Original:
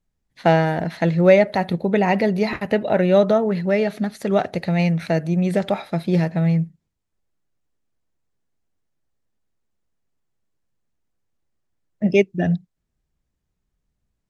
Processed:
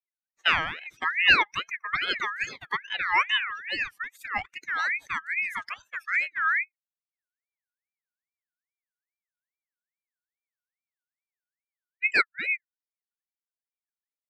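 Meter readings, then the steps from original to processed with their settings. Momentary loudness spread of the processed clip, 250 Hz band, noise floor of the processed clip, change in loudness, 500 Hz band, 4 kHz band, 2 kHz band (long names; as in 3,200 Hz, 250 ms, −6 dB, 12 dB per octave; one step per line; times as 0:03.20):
11 LU, −28.5 dB, below −85 dBFS, −6.5 dB, −27.5 dB, +7.0 dB, +5.5 dB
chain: spectral dynamics exaggerated over time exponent 2
ring modulator whose carrier an LFO sweeps 1,900 Hz, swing 25%, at 2.4 Hz
level −2 dB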